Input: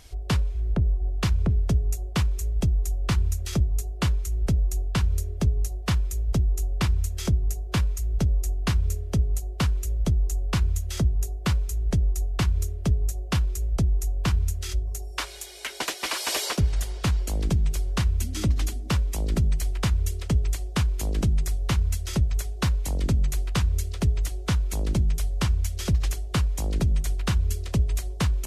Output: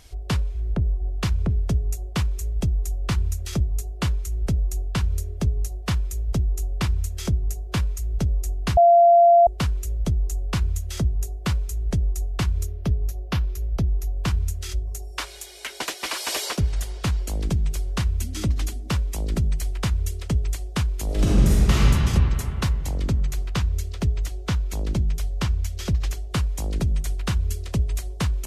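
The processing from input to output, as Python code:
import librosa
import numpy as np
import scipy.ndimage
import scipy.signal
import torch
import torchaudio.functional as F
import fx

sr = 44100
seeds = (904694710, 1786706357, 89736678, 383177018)

y = fx.peak_eq(x, sr, hz=8100.0, db=-12.5, octaves=0.62, at=(12.66, 14.16))
y = fx.reverb_throw(y, sr, start_s=21.05, length_s=0.85, rt60_s=3.0, drr_db=-8.0)
y = fx.peak_eq(y, sr, hz=10000.0, db=-5.5, octaves=0.77, at=(22.73, 26.31))
y = fx.edit(y, sr, fx.bleep(start_s=8.77, length_s=0.7, hz=688.0, db=-10.0), tone=tone)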